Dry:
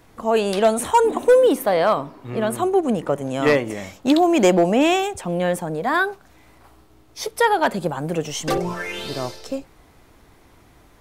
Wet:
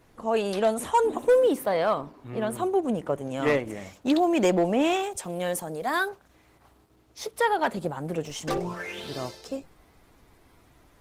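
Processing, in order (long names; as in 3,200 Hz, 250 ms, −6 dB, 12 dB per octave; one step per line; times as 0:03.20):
0:05.11–0:06.09: bass and treble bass −4 dB, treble +10 dB
level −6 dB
Opus 16 kbit/s 48,000 Hz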